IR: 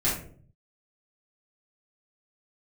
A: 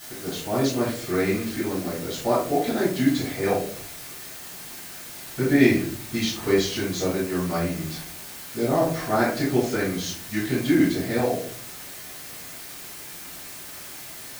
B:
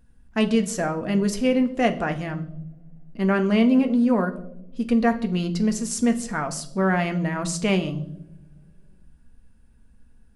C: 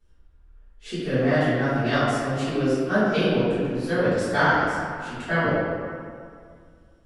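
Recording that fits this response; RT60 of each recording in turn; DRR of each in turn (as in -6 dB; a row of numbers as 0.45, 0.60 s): A; 0.50 s, not exponential, 2.1 s; -10.0, 6.0, -16.0 dB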